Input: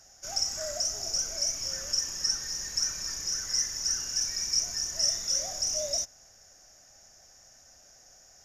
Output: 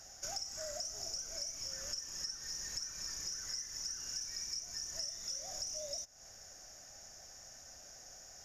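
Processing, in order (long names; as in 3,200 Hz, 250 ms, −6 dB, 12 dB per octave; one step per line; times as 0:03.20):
downward compressor 10 to 1, threshold −41 dBFS, peak gain reduction 19 dB
level +2 dB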